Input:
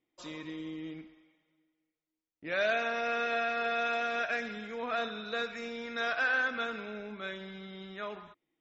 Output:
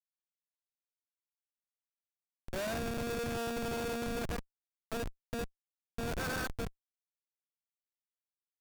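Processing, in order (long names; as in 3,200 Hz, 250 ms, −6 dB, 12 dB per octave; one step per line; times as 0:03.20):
comparator with hysteresis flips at −28 dBFS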